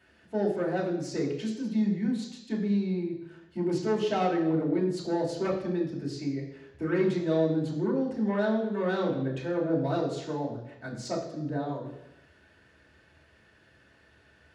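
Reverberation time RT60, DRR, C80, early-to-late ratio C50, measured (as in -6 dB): 0.90 s, -3.0 dB, 8.5 dB, 6.0 dB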